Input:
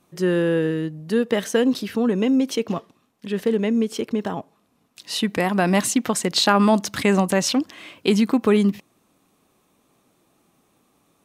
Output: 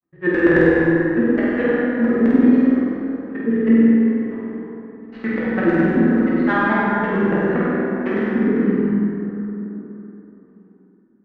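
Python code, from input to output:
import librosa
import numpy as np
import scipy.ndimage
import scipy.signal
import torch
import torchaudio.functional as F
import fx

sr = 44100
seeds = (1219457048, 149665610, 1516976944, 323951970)

y = scipy.signal.medfilt(x, 25)
y = scipy.signal.sosfilt(scipy.signal.butter(2, 7000.0, 'lowpass', fs=sr, output='sos'), y)
y = fx.high_shelf(y, sr, hz=2100.0, db=6.0)
y = fx.level_steps(y, sr, step_db=21)
y = fx.filter_lfo_lowpass(y, sr, shape='square', hz=8.8, low_hz=320.0, high_hz=1800.0, q=5.1)
y = fx.granulator(y, sr, seeds[0], grain_ms=100.0, per_s=9.6, spray_ms=16.0, spread_st=0)
y = fx.room_flutter(y, sr, wall_m=8.3, rt60_s=1.0)
y = fx.rev_plate(y, sr, seeds[1], rt60_s=3.6, hf_ratio=0.45, predelay_ms=0, drr_db=-6.0)
y = F.gain(torch.from_numpy(y), -2.0).numpy()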